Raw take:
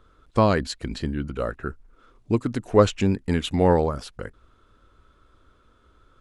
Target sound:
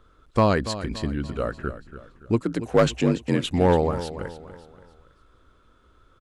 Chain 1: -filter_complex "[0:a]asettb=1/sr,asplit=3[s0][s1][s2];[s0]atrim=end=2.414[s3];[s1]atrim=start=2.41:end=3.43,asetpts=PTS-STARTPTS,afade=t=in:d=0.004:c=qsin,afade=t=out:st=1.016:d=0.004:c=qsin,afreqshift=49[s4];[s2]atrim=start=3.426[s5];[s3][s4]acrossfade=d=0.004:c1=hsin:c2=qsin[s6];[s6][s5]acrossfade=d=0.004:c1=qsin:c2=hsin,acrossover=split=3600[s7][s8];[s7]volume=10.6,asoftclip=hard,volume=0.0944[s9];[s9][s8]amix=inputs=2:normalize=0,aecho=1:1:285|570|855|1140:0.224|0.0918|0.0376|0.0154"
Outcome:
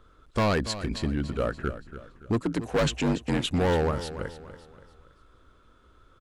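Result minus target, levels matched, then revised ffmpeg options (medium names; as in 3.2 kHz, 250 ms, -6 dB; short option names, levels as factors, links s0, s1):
overload inside the chain: distortion +10 dB
-filter_complex "[0:a]asettb=1/sr,asplit=3[s0][s1][s2];[s0]atrim=end=2.414[s3];[s1]atrim=start=2.41:end=3.43,asetpts=PTS-STARTPTS,afade=t=in:d=0.004:c=qsin,afade=t=out:st=1.016:d=0.004:c=qsin,afreqshift=49[s4];[s2]atrim=start=3.426[s5];[s3][s4]acrossfade=d=0.004:c1=hsin:c2=qsin[s6];[s6][s5]acrossfade=d=0.004:c1=qsin:c2=hsin,acrossover=split=3600[s7][s8];[s7]volume=3.35,asoftclip=hard,volume=0.299[s9];[s9][s8]amix=inputs=2:normalize=0,aecho=1:1:285|570|855|1140:0.224|0.0918|0.0376|0.0154"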